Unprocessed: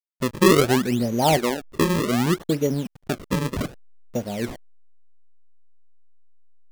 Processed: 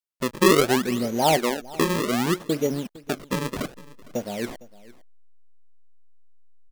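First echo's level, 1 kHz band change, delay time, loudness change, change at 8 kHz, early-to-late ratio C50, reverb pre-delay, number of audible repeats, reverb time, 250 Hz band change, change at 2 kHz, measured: -20.5 dB, 0.0 dB, 457 ms, -1.5 dB, 0.0 dB, no reverb, no reverb, 1, no reverb, -2.5 dB, 0.0 dB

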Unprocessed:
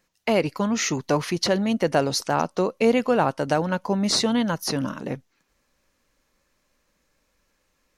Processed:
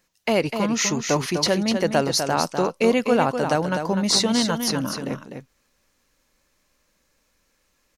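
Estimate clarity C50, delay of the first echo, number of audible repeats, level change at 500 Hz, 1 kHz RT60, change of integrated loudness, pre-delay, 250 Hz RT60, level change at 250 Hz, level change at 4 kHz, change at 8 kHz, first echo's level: no reverb, 250 ms, 1, +1.0 dB, no reverb, +1.5 dB, no reverb, no reverb, +1.0 dB, +3.5 dB, +4.5 dB, -7.0 dB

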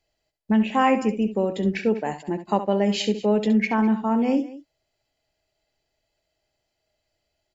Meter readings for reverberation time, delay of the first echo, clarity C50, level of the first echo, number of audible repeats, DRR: no reverb, 68 ms, no reverb, -11.0 dB, 2, no reverb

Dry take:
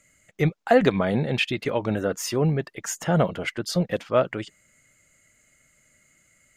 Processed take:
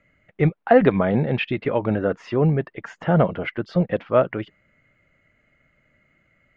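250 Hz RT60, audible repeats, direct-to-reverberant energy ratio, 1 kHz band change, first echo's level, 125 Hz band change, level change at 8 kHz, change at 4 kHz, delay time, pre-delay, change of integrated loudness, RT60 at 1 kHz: no reverb, no echo, no reverb, +3.0 dB, no echo, +3.5 dB, under -25 dB, -6.5 dB, no echo, no reverb, +3.0 dB, no reverb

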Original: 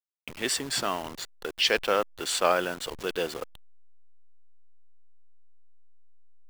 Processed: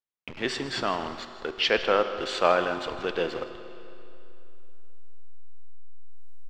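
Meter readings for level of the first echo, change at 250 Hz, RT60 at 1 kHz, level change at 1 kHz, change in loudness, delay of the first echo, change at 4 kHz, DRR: -15.5 dB, +3.0 dB, 2.9 s, +2.5 dB, +0.5 dB, 158 ms, -1.5 dB, 8.0 dB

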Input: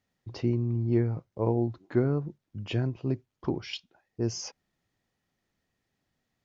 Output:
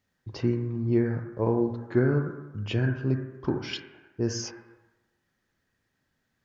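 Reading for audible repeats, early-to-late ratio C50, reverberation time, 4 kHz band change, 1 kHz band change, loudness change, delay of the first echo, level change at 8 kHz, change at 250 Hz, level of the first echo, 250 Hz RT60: no echo, 1.0 dB, 1.1 s, +2.0 dB, +2.5 dB, +2.0 dB, no echo, no reading, +2.5 dB, no echo, 1.0 s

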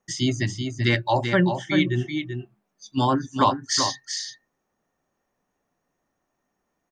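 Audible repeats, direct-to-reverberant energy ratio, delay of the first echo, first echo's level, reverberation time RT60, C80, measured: 1, no reverb, 386 ms, -7.0 dB, no reverb, no reverb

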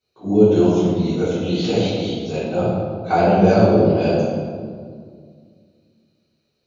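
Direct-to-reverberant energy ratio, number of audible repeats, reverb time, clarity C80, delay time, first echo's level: -13.0 dB, no echo, 2.0 s, 0.0 dB, no echo, no echo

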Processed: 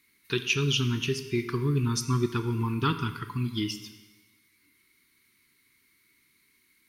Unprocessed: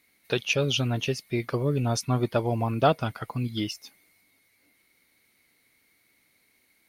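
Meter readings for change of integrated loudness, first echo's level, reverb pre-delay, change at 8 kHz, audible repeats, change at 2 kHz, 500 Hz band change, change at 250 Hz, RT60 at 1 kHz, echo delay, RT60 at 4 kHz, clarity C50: -1.5 dB, no echo, 20 ms, +0.5 dB, no echo, 0.0 dB, -5.5 dB, 0.0 dB, 1.2 s, no echo, 1.1 s, 11.5 dB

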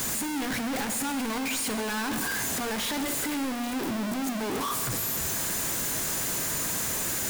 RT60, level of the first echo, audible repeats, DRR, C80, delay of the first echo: 1.8 s, no echo, no echo, 7.5 dB, 10.0 dB, no echo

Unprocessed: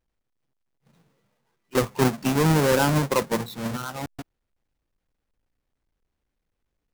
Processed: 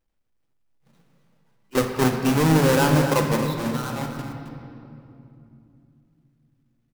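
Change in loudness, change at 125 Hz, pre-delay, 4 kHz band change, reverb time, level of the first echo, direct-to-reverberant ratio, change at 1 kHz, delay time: +2.0 dB, +3.0 dB, 3 ms, +1.5 dB, 2.8 s, -10.5 dB, 2.5 dB, +2.0 dB, 268 ms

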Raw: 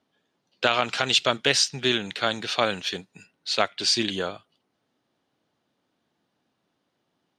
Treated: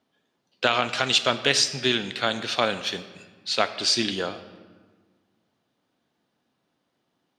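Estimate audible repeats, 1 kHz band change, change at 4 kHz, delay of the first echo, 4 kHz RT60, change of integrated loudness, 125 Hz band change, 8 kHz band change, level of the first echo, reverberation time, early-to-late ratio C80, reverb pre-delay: no echo, +0.5 dB, +0.5 dB, no echo, 1.0 s, +0.5 dB, +0.5 dB, +0.5 dB, no echo, 1.5 s, 14.0 dB, 3 ms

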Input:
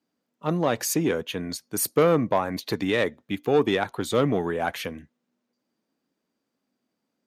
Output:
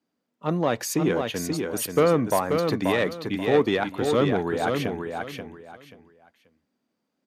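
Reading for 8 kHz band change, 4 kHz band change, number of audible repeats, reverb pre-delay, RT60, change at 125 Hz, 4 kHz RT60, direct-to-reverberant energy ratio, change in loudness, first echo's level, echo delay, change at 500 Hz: -2.5 dB, 0.0 dB, 3, no reverb, no reverb, +1.5 dB, no reverb, no reverb, +0.5 dB, -5.0 dB, 533 ms, +1.0 dB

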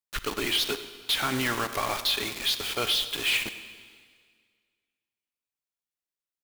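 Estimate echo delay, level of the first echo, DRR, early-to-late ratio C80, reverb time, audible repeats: 99 ms, -16.0 dB, 10.0 dB, 11.5 dB, 1.9 s, 1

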